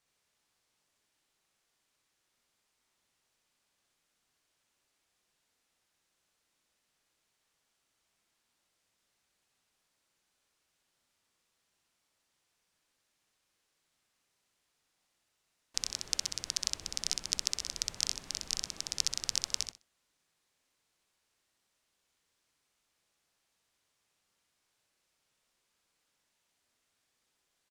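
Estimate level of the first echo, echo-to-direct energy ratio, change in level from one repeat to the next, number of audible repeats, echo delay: -3.0 dB, -3.0 dB, -15.5 dB, 3, 63 ms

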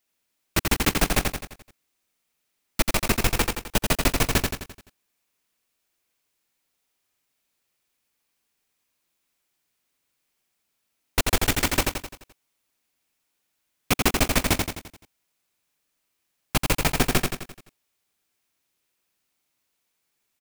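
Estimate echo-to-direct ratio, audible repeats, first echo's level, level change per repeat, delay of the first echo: -3.0 dB, 6, -4.0 dB, -6.0 dB, 86 ms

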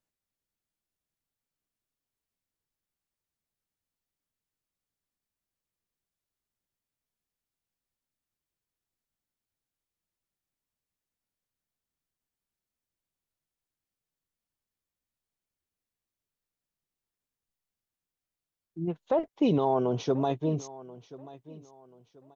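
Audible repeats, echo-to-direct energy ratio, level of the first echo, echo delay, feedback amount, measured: 2, -18.5 dB, -19.0 dB, 1.034 s, 30%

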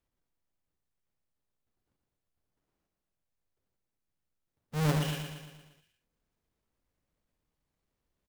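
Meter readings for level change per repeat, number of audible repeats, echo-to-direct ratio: -5.0 dB, 6, -4.5 dB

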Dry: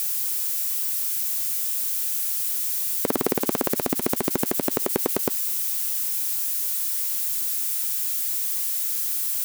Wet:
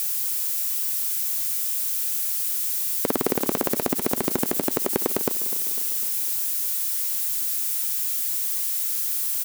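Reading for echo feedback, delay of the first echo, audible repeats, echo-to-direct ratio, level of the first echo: 57%, 0.251 s, 5, -13.5 dB, -15.0 dB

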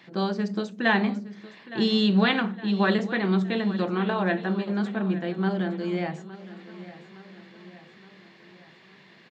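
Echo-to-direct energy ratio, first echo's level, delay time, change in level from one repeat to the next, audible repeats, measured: -15.0 dB, -16.5 dB, 0.864 s, -5.5 dB, 4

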